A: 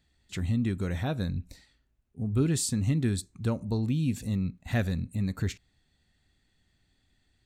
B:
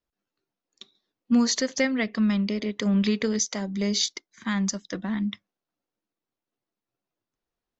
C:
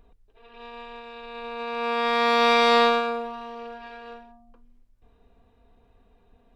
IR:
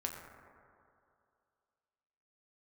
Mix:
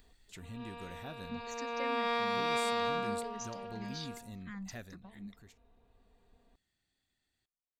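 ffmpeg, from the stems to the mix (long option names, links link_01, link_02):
-filter_complex "[0:a]lowshelf=frequency=210:gain=-10,acompressor=mode=upward:threshold=-47dB:ratio=2.5,highshelf=frequency=9800:gain=8,volume=-12dB,afade=type=out:start_time=4.6:duration=0.46:silence=0.266073[link_01];[1:a]asplit=2[link_02][link_03];[link_03]afreqshift=-2.7[link_04];[link_02][link_04]amix=inputs=2:normalize=1,volume=-17.5dB[link_05];[2:a]volume=-7.5dB[link_06];[link_01][link_05][link_06]amix=inputs=3:normalize=0,alimiter=limit=-23dB:level=0:latency=1:release=331"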